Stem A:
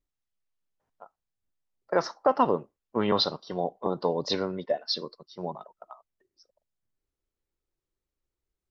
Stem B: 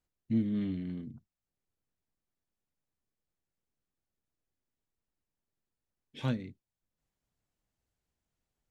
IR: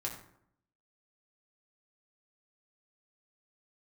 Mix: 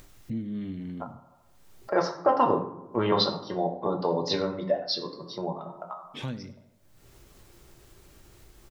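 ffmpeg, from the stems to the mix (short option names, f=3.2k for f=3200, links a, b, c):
-filter_complex "[0:a]volume=2dB,asplit=2[a][b];[b]volume=-4.5dB[c];[1:a]volume=-5dB,asplit=3[d][e][f];[e]volume=-16.5dB[g];[f]apad=whole_len=383799[h];[a][h]sidechaingate=range=-11dB:threshold=-50dB:ratio=16:detection=peak[i];[2:a]atrim=start_sample=2205[j];[c][j]afir=irnorm=-1:irlink=0[k];[g]aecho=0:1:82|164|246|328|410:1|0.36|0.13|0.0467|0.0168[l];[i][d][k][l]amix=inputs=4:normalize=0,acompressor=mode=upward:threshold=-28dB:ratio=2.5"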